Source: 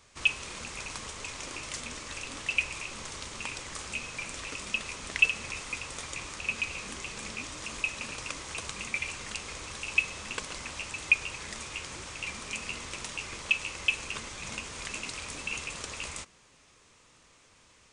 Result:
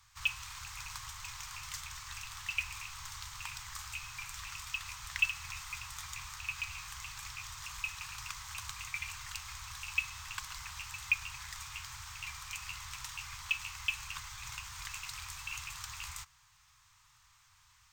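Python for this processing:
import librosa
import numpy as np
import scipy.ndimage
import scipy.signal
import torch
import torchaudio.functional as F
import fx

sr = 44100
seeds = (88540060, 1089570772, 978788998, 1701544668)

y = scipy.signal.sosfilt(scipy.signal.cheby2(4, 50, [220.0, 520.0], 'bandstop', fs=sr, output='sos'), x)
y = fx.peak_eq(y, sr, hz=2500.0, db=-5.0, octaves=0.87)
y = np.interp(np.arange(len(y)), np.arange(len(y))[::2], y[::2])
y = y * 10.0 ** (-2.0 / 20.0)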